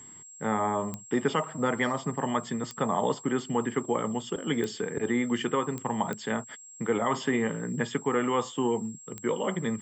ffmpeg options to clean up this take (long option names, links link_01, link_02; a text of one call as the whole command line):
ffmpeg -i in.wav -af "adeclick=threshold=4,bandreject=frequency=7600:width=30,agate=range=-21dB:threshold=-40dB" out.wav